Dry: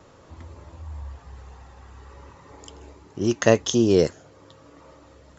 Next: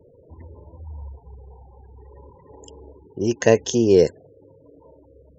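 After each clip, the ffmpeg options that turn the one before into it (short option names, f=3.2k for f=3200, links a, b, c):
-af "superequalizer=7b=1.78:10b=0.282:13b=0.631,afftfilt=real='re*gte(hypot(re,im),0.00891)':imag='im*gte(hypot(re,im),0.00891)':win_size=1024:overlap=0.75"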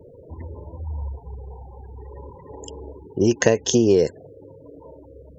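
-af "acompressor=threshold=-19dB:ratio=10,volume=6.5dB"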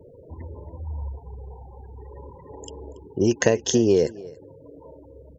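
-af "aecho=1:1:281:0.0891,volume=-2dB"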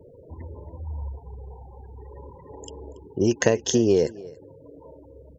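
-af "aeval=exprs='0.708*(cos(1*acos(clip(val(0)/0.708,-1,1)))-cos(1*PI/2))+0.0355*(cos(2*acos(clip(val(0)/0.708,-1,1)))-cos(2*PI/2))':c=same,volume=-1dB"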